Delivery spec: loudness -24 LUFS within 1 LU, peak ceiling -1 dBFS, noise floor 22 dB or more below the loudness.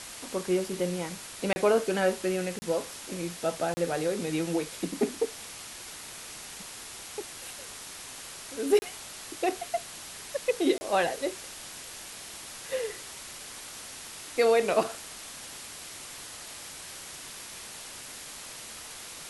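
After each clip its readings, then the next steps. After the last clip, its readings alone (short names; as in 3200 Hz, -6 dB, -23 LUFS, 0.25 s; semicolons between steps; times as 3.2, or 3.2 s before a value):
dropouts 5; longest dropout 30 ms; noise floor -44 dBFS; noise floor target -54 dBFS; loudness -32.0 LUFS; peak -11.5 dBFS; loudness target -24.0 LUFS
-> interpolate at 1.53/2.59/3.74/8.79/10.78, 30 ms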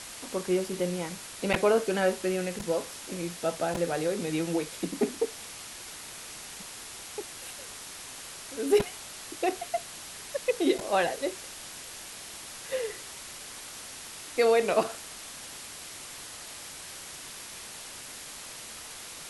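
dropouts 0; noise floor -43 dBFS; noise floor target -54 dBFS
-> denoiser 11 dB, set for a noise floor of -43 dBFS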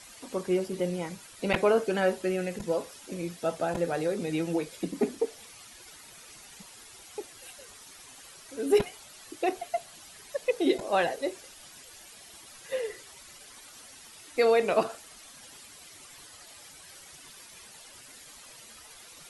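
noise floor -51 dBFS; noise floor target -52 dBFS
-> denoiser 6 dB, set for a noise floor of -51 dBFS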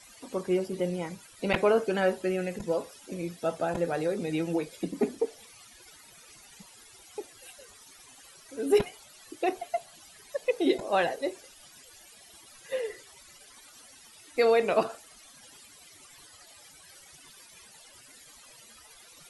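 noise floor -54 dBFS; loudness -29.5 LUFS; peak -12.0 dBFS; loudness target -24.0 LUFS
-> gain +5.5 dB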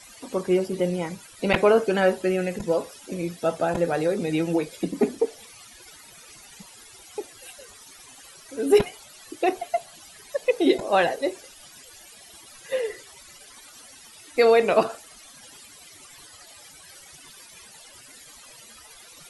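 loudness -24.0 LUFS; peak -6.5 dBFS; noise floor -48 dBFS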